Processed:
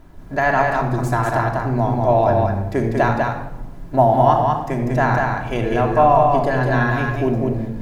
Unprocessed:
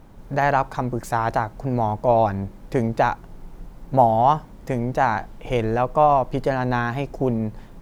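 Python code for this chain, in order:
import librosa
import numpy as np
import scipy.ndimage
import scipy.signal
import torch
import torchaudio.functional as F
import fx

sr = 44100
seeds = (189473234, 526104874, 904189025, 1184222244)

y = fx.peak_eq(x, sr, hz=1700.0, db=6.0, octaves=0.23)
y = y + 10.0 ** (-3.5 / 20.0) * np.pad(y, (int(196 * sr / 1000.0), 0))[:len(y)]
y = fx.room_shoebox(y, sr, seeds[0], volume_m3=3400.0, walls='furnished', distance_m=3.0)
y = y * 10.0 ** (-1.0 / 20.0)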